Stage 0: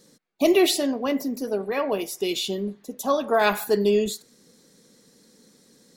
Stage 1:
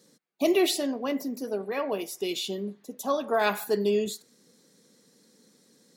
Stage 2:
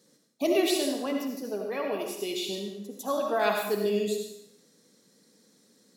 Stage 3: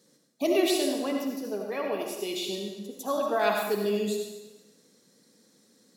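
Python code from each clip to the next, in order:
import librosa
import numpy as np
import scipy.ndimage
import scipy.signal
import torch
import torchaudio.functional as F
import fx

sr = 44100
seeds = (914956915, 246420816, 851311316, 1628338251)

y1 = scipy.signal.sosfilt(scipy.signal.butter(2, 120.0, 'highpass', fs=sr, output='sos'), x)
y1 = y1 * 10.0 ** (-4.5 / 20.0)
y2 = fx.rev_freeverb(y1, sr, rt60_s=0.75, hf_ratio=1.0, predelay_ms=35, drr_db=2.0)
y2 = y2 * 10.0 ** (-3.0 / 20.0)
y3 = fx.echo_alternate(y2, sr, ms=118, hz=1300.0, feedback_pct=51, wet_db=-9.5)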